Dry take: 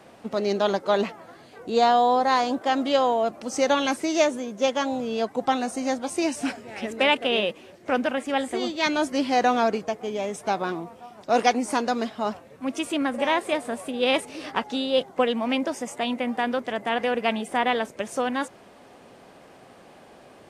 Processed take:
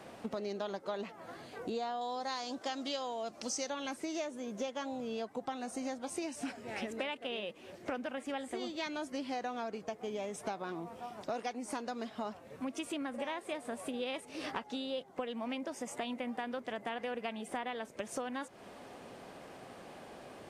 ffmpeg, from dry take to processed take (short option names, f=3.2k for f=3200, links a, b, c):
-filter_complex "[0:a]asettb=1/sr,asplit=3[a][b][c];[a]atrim=end=2.014[d];[b]atrim=start=2.01:end=3.7,asetpts=PTS-STARTPTS,afade=t=in:d=0.004:c=qsin,afade=t=out:st=1.686:d=0.004:c=qsin,equalizer=f=5.5k:w=0.77:g=13[e];[c]atrim=start=3.696[f];[d][e]acrossfade=d=0.004:c1=hsin:c2=qsin[g];[g][f]acrossfade=d=0.004:c1=qsin:c2=hsin,acompressor=threshold=-35dB:ratio=8,volume=-1dB"